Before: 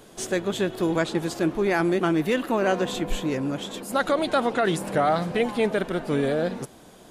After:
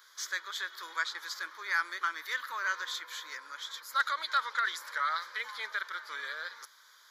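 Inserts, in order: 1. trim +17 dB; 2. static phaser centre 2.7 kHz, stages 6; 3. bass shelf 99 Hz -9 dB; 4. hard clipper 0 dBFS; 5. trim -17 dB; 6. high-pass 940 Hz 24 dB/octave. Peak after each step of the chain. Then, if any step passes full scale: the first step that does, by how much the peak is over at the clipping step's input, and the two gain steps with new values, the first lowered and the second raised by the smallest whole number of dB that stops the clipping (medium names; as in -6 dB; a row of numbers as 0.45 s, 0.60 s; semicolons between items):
+5.5 dBFS, +3.5 dBFS, +3.5 dBFS, 0.0 dBFS, -17.0 dBFS, -15.5 dBFS; step 1, 3.5 dB; step 1 +13 dB, step 5 -13 dB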